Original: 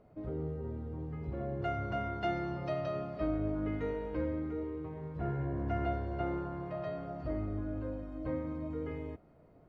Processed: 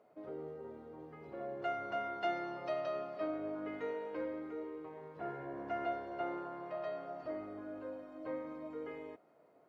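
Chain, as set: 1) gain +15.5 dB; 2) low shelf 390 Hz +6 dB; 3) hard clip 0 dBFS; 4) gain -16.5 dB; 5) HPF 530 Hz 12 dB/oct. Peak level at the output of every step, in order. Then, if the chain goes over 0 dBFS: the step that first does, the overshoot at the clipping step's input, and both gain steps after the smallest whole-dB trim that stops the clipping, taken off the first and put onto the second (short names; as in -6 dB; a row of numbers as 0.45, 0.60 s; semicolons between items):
-5.5, -2.0, -2.0, -18.5, -25.0 dBFS; no overload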